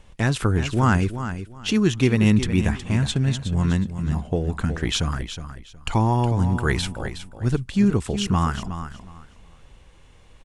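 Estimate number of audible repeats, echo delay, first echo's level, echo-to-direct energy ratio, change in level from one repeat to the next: 2, 0.366 s, -10.5 dB, -10.5 dB, -13.0 dB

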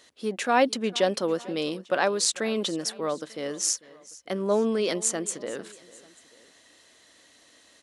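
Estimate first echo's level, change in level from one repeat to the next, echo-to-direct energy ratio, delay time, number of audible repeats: -20.5 dB, -5.5 dB, -19.5 dB, 0.446 s, 2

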